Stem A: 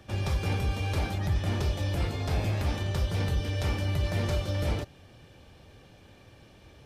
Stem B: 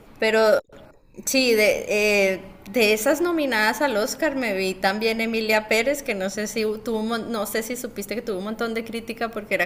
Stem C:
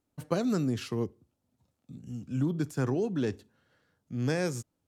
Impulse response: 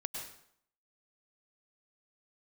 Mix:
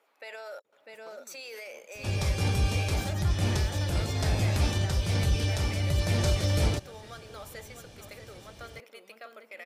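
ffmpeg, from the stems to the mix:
-filter_complex "[0:a]lowpass=11000,bass=f=250:g=2,treble=f=4000:g=10,adelay=1950,volume=1.26[s0];[1:a]highpass=120,bass=f=250:g=-14,treble=f=4000:g=-2,volume=0.178,asplit=3[s1][s2][s3];[s2]volume=0.266[s4];[2:a]acompressor=threshold=0.0158:ratio=3,adelay=750,volume=0.299[s5];[s3]apad=whole_len=388167[s6];[s0][s6]sidechaincompress=threshold=0.0251:ratio=8:attack=16:release=1290[s7];[s1][s5]amix=inputs=2:normalize=0,highpass=590,alimiter=level_in=3.16:limit=0.0631:level=0:latency=1:release=20,volume=0.316,volume=1[s8];[s4]aecho=0:1:648:1[s9];[s7][s8][s9]amix=inputs=3:normalize=0"

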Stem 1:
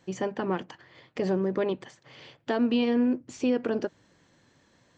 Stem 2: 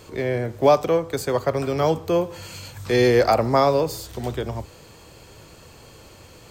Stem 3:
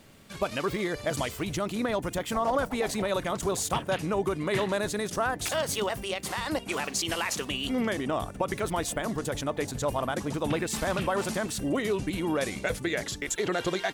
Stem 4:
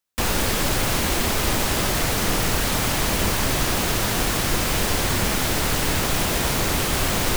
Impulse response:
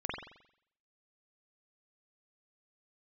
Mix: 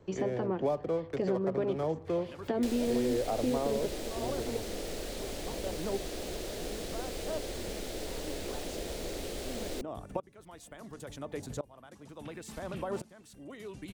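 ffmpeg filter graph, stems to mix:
-filter_complex "[0:a]agate=range=0.398:threshold=0.002:ratio=16:detection=peak,volume=0.841[s0];[1:a]adynamicsmooth=sensitivity=4.5:basefreq=590,volume=0.355[s1];[2:a]aeval=exprs='val(0)*pow(10,-23*if(lt(mod(-0.71*n/s,1),2*abs(-0.71)/1000),1-mod(-0.71*n/s,1)/(2*abs(-0.71)/1000),(mod(-0.71*n/s,1)-2*abs(-0.71)/1000)/(1-2*abs(-0.71)/1000))/20)':c=same,adelay=1750,volume=0.668[s2];[3:a]equalizer=f=125:t=o:w=1:g=-12,equalizer=f=250:t=o:w=1:g=-4,equalizer=f=500:t=o:w=1:g=4,equalizer=f=1000:t=o:w=1:g=-10,equalizer=f=2000:t=o:w=1:g=3,equalizer=f=4000:t=o:w=1:g=7,equalizer=f=8000:t=o:w=1:g=5,adelay=2450,volume=0.376[s3];[s0][s1][s2][s3]amix=inputs=4:normalize=0,acrossover=split=220|760[s4][s5][s6];[s4]acompressor=threshold=0.01:ratio=4[s7];[s5]acompressor=threshold=0.0398:ratio=4[s8];[s6]acompressor=threshold=0.00447:ratio=4[s9];[s7][s8][s9]amix=inputs=3:normalize=0"

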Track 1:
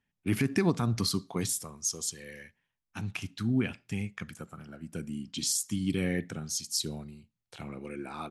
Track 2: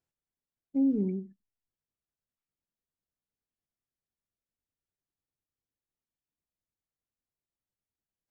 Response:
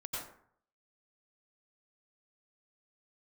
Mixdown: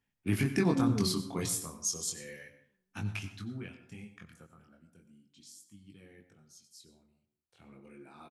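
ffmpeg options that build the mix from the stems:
-filter_complex "[0:a]flanger=delay=19.5:depth=5:speed=0.34,volume=3.35,afade=t=out:st=3.12:d=0.4:silence=0.298538,afade=t=out:st=4.5:d=0.51:silence=0.251189,afade=t=in:st=7.41:d=0.32:silence=0.298538,asplit=2[s0][s1];[s1]volume=0.335[s2];[1:a]volume=0.596,asplit=2[s3][s4];[s4]volume=0.1[s5];[2:a]atrim=start_sample=2205[s6];[s2][s6]afir=irnorm=-1:irlink=0[s7];[s5]aecho=0:1:432|864|1296|1728|2160:1|0.33|0.109|0.0359|0.0119[s8];[s0][s3][s7][s8]amix=inputs=4:normalize=0"

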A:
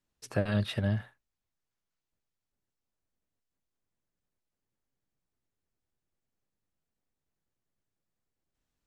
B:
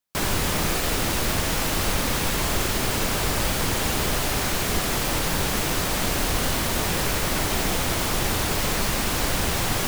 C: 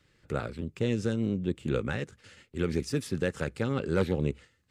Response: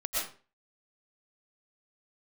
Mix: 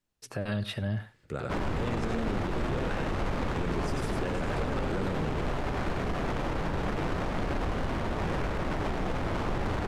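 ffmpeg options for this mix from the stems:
-filter_complex "[0:a]volume=1.06,asplit=2[s0][s1];[s1]volume=0.112[s2];[1:a]highshelf=f=7300:g=3,adynamicsmooth=sensitivity=1:basefreq=850,adelay=1350,volume=0.841[s3];[2:a]adelay=1000,volume=0.708,asplit=2[s4][s5];[s5]volume=0.631[s6];[s2][s6]amix=inputs=2:normalize=0,aecho=0:1:93:1[s7];[s0][s3][s4][s7]amix=inputs=4:normalize=0,alimiter=limit=0.0794:level=0:latency=1:release=36"

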